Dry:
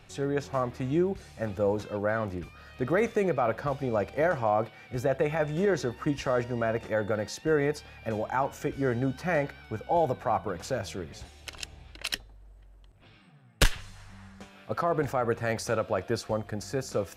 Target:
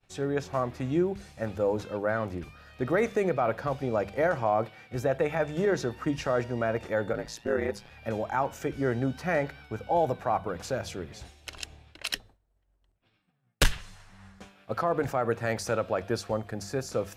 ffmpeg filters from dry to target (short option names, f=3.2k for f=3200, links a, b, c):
-filter_complex "[0:a]asplit=3[a][b][c];[a]afade=t=out:st=7.12:d=0.02[d];[b]aeval=exprs='val(0)*sin(2*PI*57*n/s)':c=same,afade=t=in:st=7.12:d=0.02,afade=t=out:st=7.89:d=0.02[e];[c]afade=t=in:st=7.89:d=0.02[f];[d][e][f]amix=inputs=3:normalize=0,bandreject=f=50:t=h:w=6,bandreject=f=100:t=h:w=6,bandreject=f=150:t=h:w=6,bandreject=f=200:t=h:w=6,agate=range=-33dB:threshold=-46dB:ratio=3:detection=peak"